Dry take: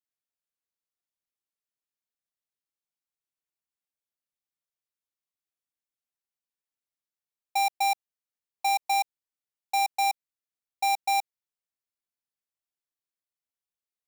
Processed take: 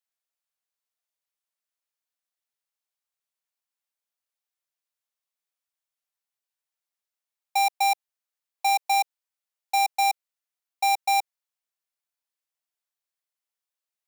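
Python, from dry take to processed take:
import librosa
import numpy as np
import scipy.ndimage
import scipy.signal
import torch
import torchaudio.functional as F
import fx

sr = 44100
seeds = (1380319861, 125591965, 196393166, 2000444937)

y = scipy.signal.sosfilt(scipy.signal.butter(4, 520.0, 'highpass', fs=sr, output='sos'), x)
y = y * librosa.db_to_amplitude(3.0)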